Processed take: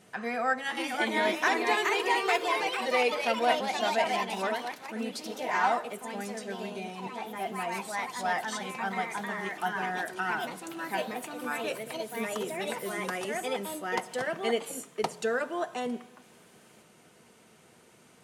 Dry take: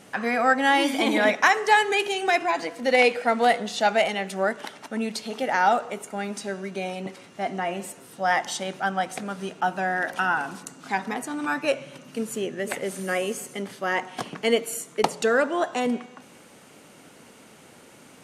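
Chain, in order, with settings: ever faster or slower copies 574 ms, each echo +2 st, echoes 3; comb of notches 280 Hz; trim -7 dB

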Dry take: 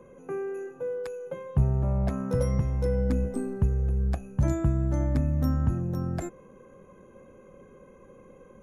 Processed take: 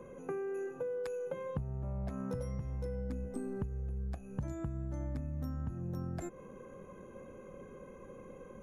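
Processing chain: compression 10:1, threshold -36 dBFS, peak gain reduction 19 dB; trim +1 dB

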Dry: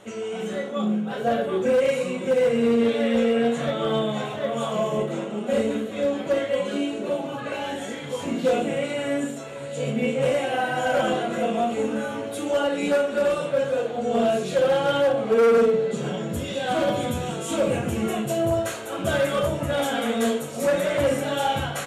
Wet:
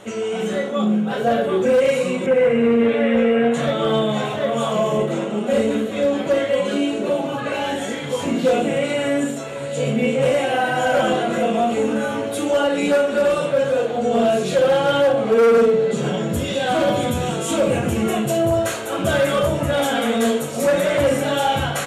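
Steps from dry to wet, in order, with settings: 2.26–3.54 s: resonant high shelf 3.2 kHz -10.5 dB, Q 1.5; in parallel at +1 dB: peak limiter -19.5 dBFS, peak gain reduction 8 dB

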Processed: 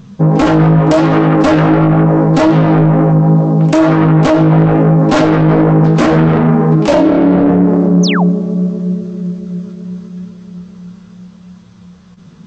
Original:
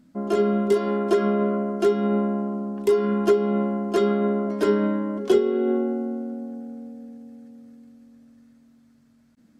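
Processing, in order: self-modulated delay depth 0.77 ms; flange 1 Hz, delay 5.7 ms, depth 10 ms, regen +29%; resampled via 22.05 kHz; in parallel at -5 dB: saturation -22 dBFS, distortion -13 dB; on the sum: tape speed -23%; painted sound fall, 8.03–8.24 s, 560–6800 Hz -38 dBFS; loudness maximiser +22 dB; trim -1 dB

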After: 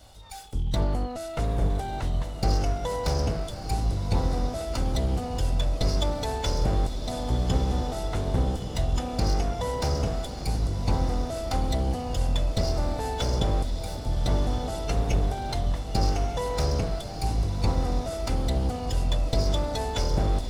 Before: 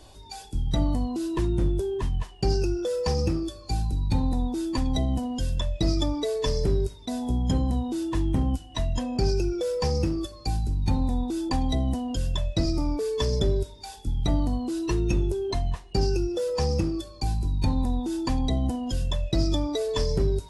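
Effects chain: comb filter that takes the minimum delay 1.4 ms; echo that smears into a reverb 1251 ms, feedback 54%, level -7.5 dB

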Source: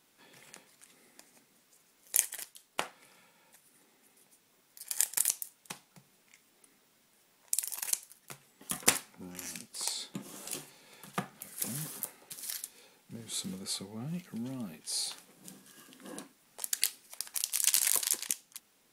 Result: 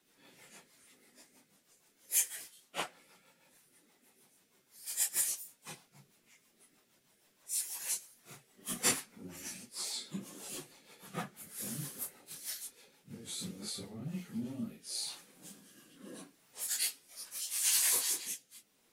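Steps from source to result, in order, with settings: phase randomisation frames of 100 ms; rotary cabinet horn 6.3 Hz, later 0.8 Hz, at 13.40 s

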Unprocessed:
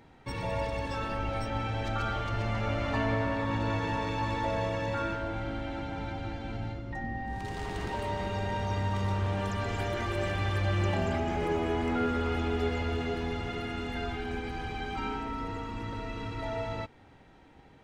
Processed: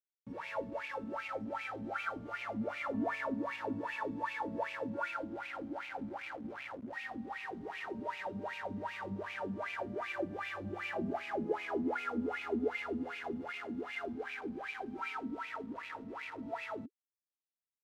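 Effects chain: word length cut 6-bit, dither none; wah-wah 2.6 Hz 210–2500 Hz, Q 8.2; trim +6 dB

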